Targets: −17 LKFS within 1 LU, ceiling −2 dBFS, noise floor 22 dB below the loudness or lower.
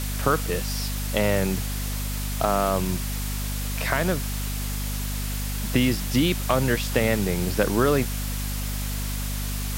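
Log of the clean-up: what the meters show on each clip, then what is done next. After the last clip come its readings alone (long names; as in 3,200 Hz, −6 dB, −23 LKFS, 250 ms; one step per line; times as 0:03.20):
mains hum 50 Hz; hum harmonics up to 250 Hz; level of the hum −27 dBFS; background noise floor −28 dBFS; target noise floor −48 dBFS; integrated loudness −25.5 LKFS; sample peak −6.0 dBFS; target loudness −17.0 LKFS
→ hum removal 50 Hz, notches 5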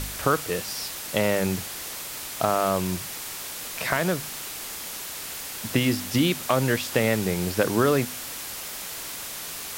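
mains hum none found; background noise floor −36 dBFS; target noise floor −49 dBFS
→ broadband denoise 13 dB, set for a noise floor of −36 dBFS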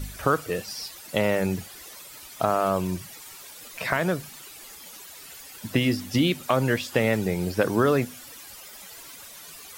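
background noise floor −44 dBFS; target noise floor −48 dBFS
→ broadband denoise 6 dB, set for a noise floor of −44 dBFS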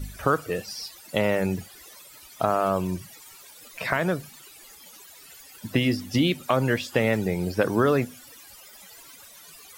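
background noise floor −49 dBFS; integrated loudness −25.5 LKFS; sample peak −7.0 dBFS; target loudness −17.0 LKFS
→ level +8.5 dB
brickwall limiter −2 dBFS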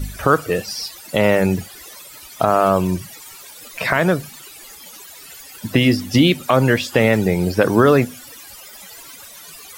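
integrated loudness −17.5 LKFS; sample peak −2.0 dBFS; background noise floor −40 dBFS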